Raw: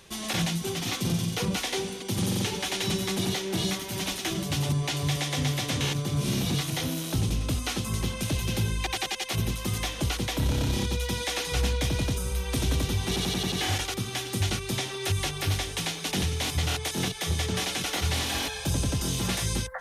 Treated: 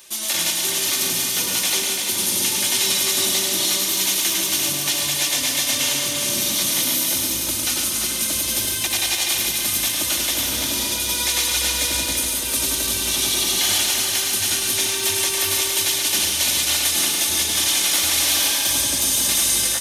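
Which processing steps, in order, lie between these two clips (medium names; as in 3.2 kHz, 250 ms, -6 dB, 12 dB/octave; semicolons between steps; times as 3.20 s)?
RIAA curve recording; comb 3.3 ms, depth 52%; on a send: multi-tap echo 105/341 ms -4.5/-5.5 dB; on the sum: bit-crushed delay 141 ms, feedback 80%, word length 8-bit, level -7 dB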